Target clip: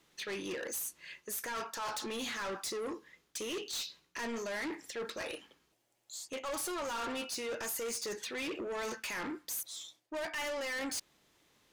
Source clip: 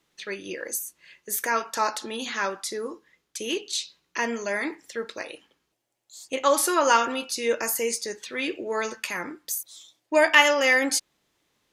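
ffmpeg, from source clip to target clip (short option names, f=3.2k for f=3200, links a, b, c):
-af "areverse,acompressor=threshold=-31dB:ratio=4,areverse,asoftclip=type=tanh:threshold=-37.5dB,volume=2.5dB"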